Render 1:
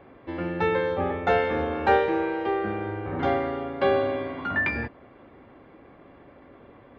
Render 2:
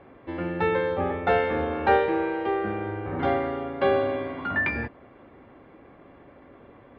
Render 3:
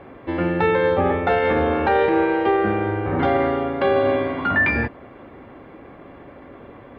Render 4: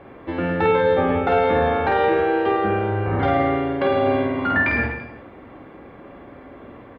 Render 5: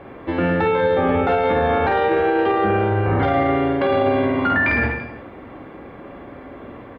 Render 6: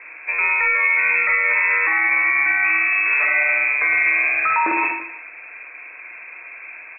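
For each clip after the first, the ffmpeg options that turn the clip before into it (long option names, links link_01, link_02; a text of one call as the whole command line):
ffmpeg -i in.wav -af "lowpass=4200" out.wav
ffmpeg -i in.wav -af "alimiter=limit=-18.5dB:level=0:latency=1:release=26,volume=8.5dB" out.wav
ffmpeg -i in.wav -af "aecho=1:1:50|107.5|173.6|249.7|337.1:0.631|0.398|0.251|0.158|0.1,volume=-2dB" out.wav
ffmpeg -i in.wav -af "alimiter=limit=-14.5dB:level=0:latency=1:release=12,volume=4dB" out.wav
ffmpeg -i in.wav -af "lowpass=frequency=2300:width_type=q:width=0.5098,lowpass=frequency=2300:width_type=q:width=0.6013,lowpass=frequency=2300:width_type=q:width=0.9,lowpass=frequency=2300:width_type=q:width=2.563,afreqshift=-2700" out.wav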